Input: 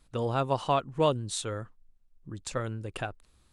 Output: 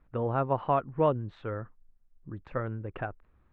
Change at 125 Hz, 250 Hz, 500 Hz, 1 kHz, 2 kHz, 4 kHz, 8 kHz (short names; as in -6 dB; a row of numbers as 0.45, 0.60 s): 0.0 dB, 0.0 dB, 0.0 dB, 0.0 dB, -2.0 dB, under -15 dB, under -40 dB